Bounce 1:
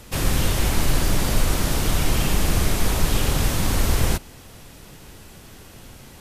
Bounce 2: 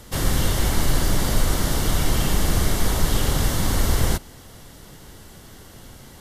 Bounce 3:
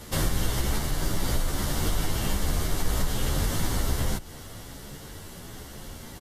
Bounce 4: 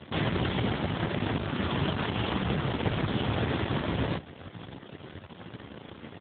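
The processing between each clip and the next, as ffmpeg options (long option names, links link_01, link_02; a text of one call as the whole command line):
ffmpeg -i in.wav -af "bandreject=frequency=2500:width=6.3" out.wav
ffmpeg -i in.wav -filter_complex "[0:a]acompressor=threshold=-24dB:ratio=6,asplit=2[link_01][link_02];[link_02]adelay=11.1,afreqshift=1.2[link_03];[link_01][link_03]amix=inputs=2:normalize=1,volume=5dB" out.wav
ffmpeg -i in.wav -af "aeval=exprs='0.237*(cos(1*acos(clip(val(0)/0.237,-1,1)))-cos(1*PI/2))+0.106*(cos(8*acos(clip(val(0)/0.237,-1,1)))-cos(8*PI/2))':channel_layout=same,asoftclip=type=tanh:threshold=-13.5dB" -ar 8000 -c:a libopencore_amrnb -b:a 7950 out.amr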